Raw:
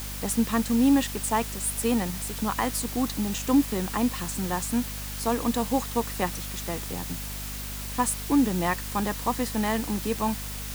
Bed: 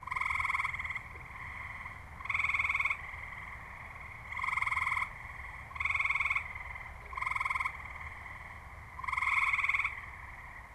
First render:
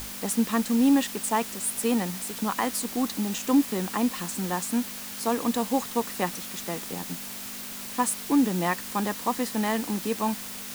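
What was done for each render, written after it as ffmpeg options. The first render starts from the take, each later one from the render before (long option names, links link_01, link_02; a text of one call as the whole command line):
ffmpeg -i in.wav -af "bandreject=frequency=50:width_type=h:width=6,bandreject=frequency=100:width_type=h:width=6,bandreject=frequency=150:width_type=h:width=6" out.wav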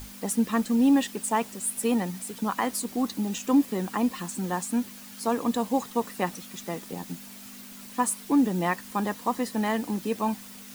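ffmpeg -i in.wav -af "afftdn=noise_reduction=9:noise_floor=-38" out.wav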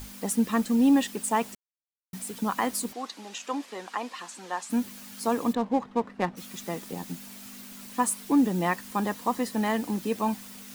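ffmpeg -i in.wav -filter_complex "[0:a]asplit=3[link_01][link_02][link_03];[link_01]afade=type=out:start_time=2.92:duration=0.02[link_04];[link_02]highpass=610,lowpass=6000,afade=type=in:start_time=2.92:duration=0.02,afade=type=out:start_time=4.69:duration=0.02[link_05];[link_03]afade=type=in:start_time=4.69:duration=0.02[link_06];[link_04][link_05][link_06]amix=inputs=3:normalize=0,asplit=3[link_07][link_08][link_09];[link_07]afade=type=out:start_time=5.52:duration=0.02[link_10];[link_08]adynamicsmooth=sensitivity=4:basefreq=1300,afade=type=in:start_time=5.52:duration=0.02,afade=type=out:start_time=6.36:duration=0.02[link_11];[link_09]afade=type=in:start_time=6.36:duration=0.02[link_12];[link_10][link_11][link_12]amix=inputs=3:normalize=0,asplit=3[link_13][link_14][link_15];[link_13]atrim=end=1.55,asetpts=PTS-STARTPTS,afade=type=out:start_time=1.546:duration=0.004:curve=hsin[link_16];[link_14]atrim=start=1.55:end=2.13,asetpts=PTS-STARTPTS,volume=0[link_17];[link_15]atrim=start=2.13,asetpts=PTS-STARTPTS,afade=type=in:duration=0.004:curve=hsin[link_18];[link_16][link_17][link_18]concat=n=3:v=0:a=1" out.wav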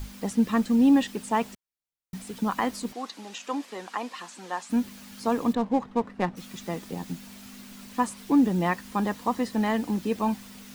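ffmpeg -i in.wav -filter_complex "[0:a]acrossover=split=6300[link_01][link_02];[link_02]acompressor=threshold=-49dB:ratio=4:attack=1:release=60[link_03];[link_01][link_03]amix=inputs=2:normalize=0,lowshelf=frequency=120:gain=9" out.wav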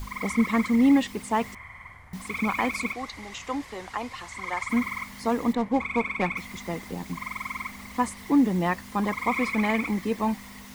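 ffmpeg -i in.wav -i bed.wav -filter_complex "[1:a]volume=-1dB[link_01];[0:a][link_01]amix=inputs=2:normalize=0" out.wav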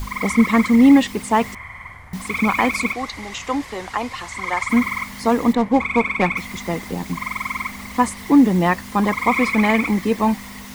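ffmpeg -i in.wav -af "volume=8dB" out.wav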